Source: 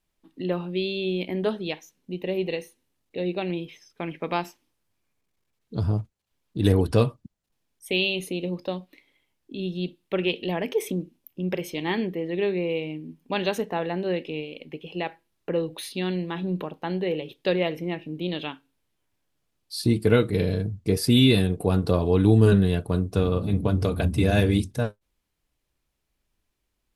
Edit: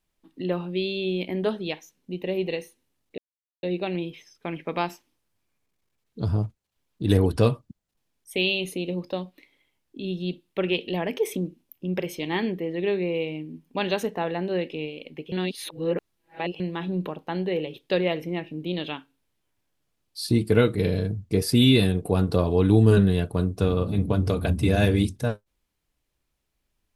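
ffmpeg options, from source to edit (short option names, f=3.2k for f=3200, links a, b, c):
-filter_complex "[0:a]asplit=4[a][b][c][d];[a]atrim=end=3.18,asetpts=PTS-STARTPTS,afade=t=out:st=3.176:d=0.004:c=hsin,apad=pad_dur=0.45[e];[b]atrim=start=3.18:end=14.872,asetpts=PTS-STARTPTS,afade=t=in:d=0.004:c=hsin[f];[c]atrim=start=14.868:end=16.152,asetpts=PTS-STARTPTS,areverse[g];[d]atrim=start=16.148[h];[e][f]concat=n=2:v=0:a=1[i];[i][g]acrossfade=d=0.004:c1=hsin:c2=hsin[j];[j][h]acrossfade=d=0.004:c1=hsin:c2=hsin"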